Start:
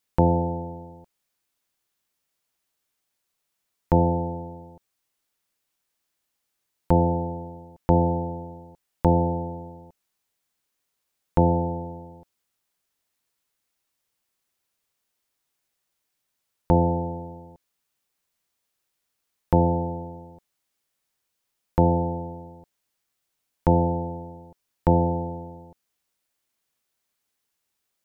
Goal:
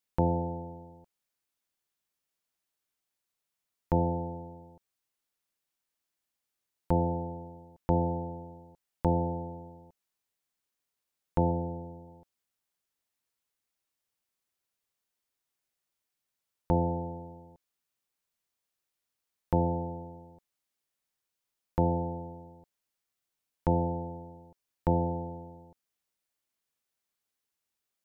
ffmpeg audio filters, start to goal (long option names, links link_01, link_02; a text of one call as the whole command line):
ffmpeg -i in.wav -filter_complex "[0:a]asettb=1/sr,asplit=3[link_01][link_02][link_03];[link_01]atrim=end=11.514[link_04];[link_02]atrim=start=11.51:end=12.08,asetpts=PTS-STARTPTS,afade=type=in:duration=0.004:curve=qsin,afade=type=out:start_time=0.566:duration=0.004:curve=qsin,equalizer=frequency=1400:width_type=o:width=0.74:gain=-13.5[link_05];[link_03]atrim=start=12.076[link_06];[link_04][link_05]acrossfade=duration=0.004:curve1=hsin:curve2=qsin[link_07];[link_07][link_06]acrossfade=duration=0.004:curve1=qsin:curve2=hsin,volume=-7.5dB" out.wav